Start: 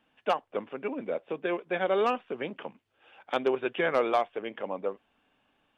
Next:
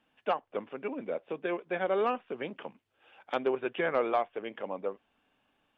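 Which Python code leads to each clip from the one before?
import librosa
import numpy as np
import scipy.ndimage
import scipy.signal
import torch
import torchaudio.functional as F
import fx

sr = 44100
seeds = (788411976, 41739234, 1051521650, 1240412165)

y = fx.env_lowpass_down(x, sr, base_hz=2700.0, full_db=-25.0)
y = y * librosa.db_to_amplitude(-2.5)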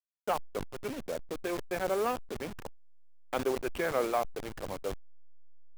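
y = fx.delta_hold(x, sr, step_db=-34.5)
y = fx.sustainer(y, sr, db_per_s=98.0)
y = y * librosa.db_to_amplitude(-1.5)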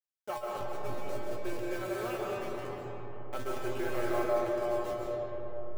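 y = fx.comb_fb(x, sr, f0_hz=120.0, decay_s=0.24, harmonics='odd', damping=0.0, mix_pct=90)
y = fx.rev_freeverb(y, sr, rt60_s=4.4, hf_ratio=0.35, predelay_ms=100, drr_db=-4.0)
y = y * librosa.db_to_amplitude(4.5)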